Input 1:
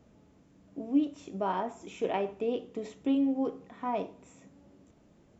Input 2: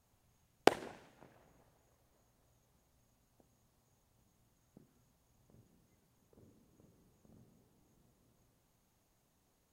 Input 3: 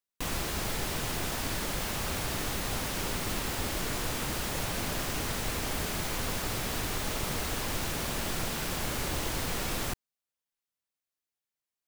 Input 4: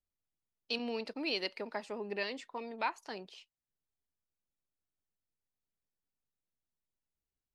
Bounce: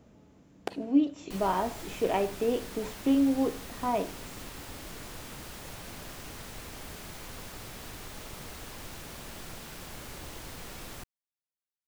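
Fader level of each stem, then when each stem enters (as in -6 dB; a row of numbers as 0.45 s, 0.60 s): +3.0 dB, -9.0 dB, -10.5 dB, -18.5 dB; 0.00 s, 0.00 s, 1.10 s, 0.00 s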